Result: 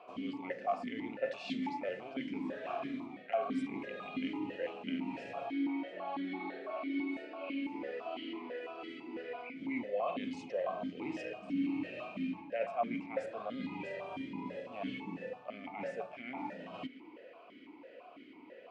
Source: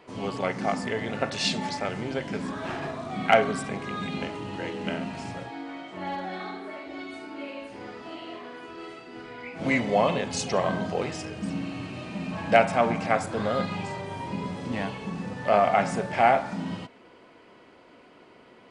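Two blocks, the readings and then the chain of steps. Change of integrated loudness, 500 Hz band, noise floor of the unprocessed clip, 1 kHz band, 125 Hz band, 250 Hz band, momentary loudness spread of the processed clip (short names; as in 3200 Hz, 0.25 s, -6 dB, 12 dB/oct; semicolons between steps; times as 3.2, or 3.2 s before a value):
-11.5 dB, -11.5 dB, -53 dBFS, -14.0 dB, -18.5 dB, -6.0 dB, 10 LU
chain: notch 790 Hz, Q 12; reverse; compressor 6:1, threshold -35 dBFS, peak gain reduction 20 dB; reverse; vowel sequencer 6 Hz; gain +9.5 dB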